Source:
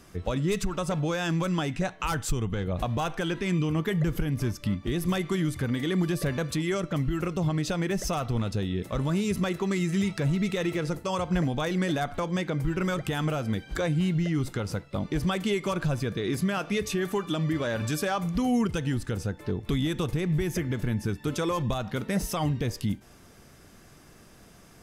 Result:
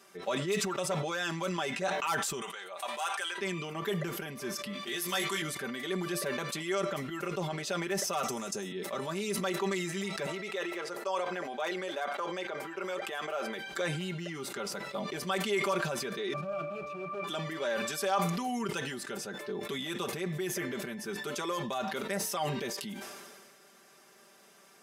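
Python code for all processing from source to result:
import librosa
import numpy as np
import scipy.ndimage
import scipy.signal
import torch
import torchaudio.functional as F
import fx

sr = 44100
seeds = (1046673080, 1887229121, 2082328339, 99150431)

y = fx.chain(x, sr, fx.highpass(hz=890.0, slope=12),
    fx.peak_eq(hz=8800.0, db=12.0, octaves=0.33), at=(2.41, 3.38))
y = fx.chain(y, sr, fx.tilt_shelf(db=-6.0, hz=1100.0),
    fx.doubler(ms=20.0, db=-5.5), at=(4.73, 5.42))
y = fx.chain(y, sr, fx.high_shelf_res(hz=5000.0, db=8.5, q=3.0),
    fx.band_squash(depth_pct=40), at=(8.23, 8.72))
y = fx.chain(y, sr, fx.highpass(hz=390.0, slope=12),
    fx.high_shelf(hz=3200.0, db=-8.5), at=(10.26, 13.59))
y = fx.chain(y, sr, fx.halfwave_hold(),
    fx.octave_resonator(note='D', decay_s=0.17),
    fx.env_flatten(amount_pct=70), at=(16.33, 17.24))
y = scipy.signal.sosfilt(scipy.signal.butter(2, 410.0, 'highpass', fs=sr, output='sos'), y)
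y = y + 0.77 * np.pad(y, (int(5.1 * sr / 1000.0), 0))[:len(y)]
y = fx.sustainer(y, sr, db_per_s=31.0)
y = y * 10.0 ** (-4.5 / 20.0)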